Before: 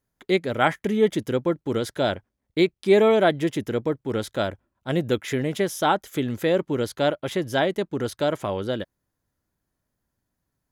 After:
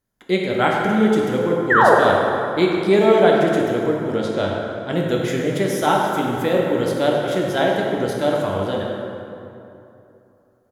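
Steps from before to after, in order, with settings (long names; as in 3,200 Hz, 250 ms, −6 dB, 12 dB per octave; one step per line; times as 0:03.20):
0:01.70–0:01.94: sound drawn into the spectrogram fall 370–2,000 Hz −15 dBFS
0:04.16–0:04.92: low-pass filter 6,400 Hz 12 dB per octave
far-end echo of a speakerphone 100 ms, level −9 dB
dense smooth reverb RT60 2.9 s, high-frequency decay 0.55×, DRR −1.5 dB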